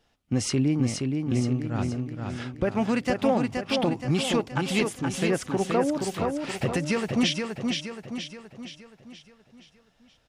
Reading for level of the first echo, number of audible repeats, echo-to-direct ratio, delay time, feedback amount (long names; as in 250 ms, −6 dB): −4.5 dB, 5, −3.5 dB, 473 ms, 49%